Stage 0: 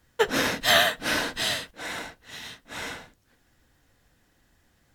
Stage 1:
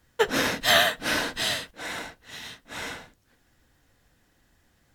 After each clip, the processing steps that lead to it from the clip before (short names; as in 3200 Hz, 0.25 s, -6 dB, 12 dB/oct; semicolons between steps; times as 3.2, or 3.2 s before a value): nothing audible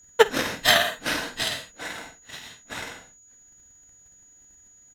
doubler 49 ms -7 dB; transient shaper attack +12 dB, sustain -2 dB; whine 6800 Hz -47 dBFS; gain -4.5 dB